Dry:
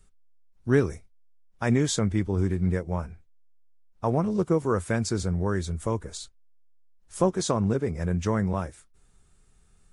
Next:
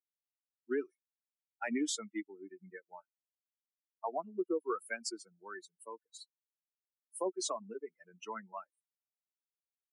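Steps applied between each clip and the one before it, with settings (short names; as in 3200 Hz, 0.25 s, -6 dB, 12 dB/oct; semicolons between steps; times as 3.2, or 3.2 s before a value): per-bin expansion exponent 3; steep high-pass 270 Hz 48 dB/oct; limiter -25.5 dBFS, peak gain reduction 11 dB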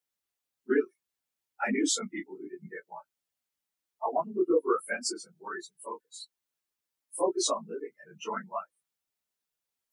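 phase scrambler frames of 50 ms; gain +8 dB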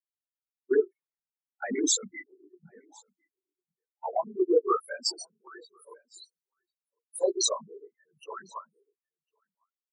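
formant sharpening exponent 3; echo 1.053 s -18.5 dB; three-band expander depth 100%; gain -4.5 dB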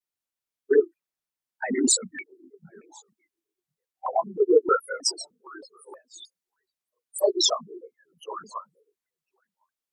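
shaped vibrato saw down 3.2 Hz, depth 250 cents; gain +4.5 dB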